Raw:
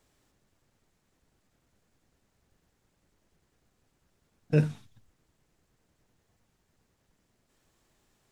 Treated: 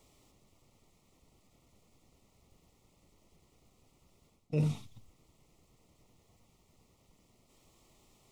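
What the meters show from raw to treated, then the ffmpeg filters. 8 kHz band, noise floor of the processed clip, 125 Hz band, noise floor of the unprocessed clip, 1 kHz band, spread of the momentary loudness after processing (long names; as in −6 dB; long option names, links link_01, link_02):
can't be measured, −71 dBFS, −4.5 dB, −76 dBFS, −3.5 dB, 8 LU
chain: -af "areverse,acompressor=threshold=-33dB:ratio=8,areverse,asuperstop=centerf=1600:order=4:qfactor=2.3,volume=5.5dB"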